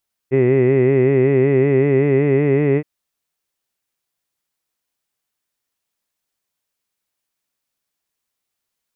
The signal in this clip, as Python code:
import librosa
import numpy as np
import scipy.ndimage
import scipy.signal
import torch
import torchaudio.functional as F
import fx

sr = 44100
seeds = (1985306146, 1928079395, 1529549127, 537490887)

y = fx.vowel(sr, seeds[0], length_s=2.52, word='hid', hz=128.0, glide_st=2.0, vibrato_hz=5.3, vibrato_st=0.9)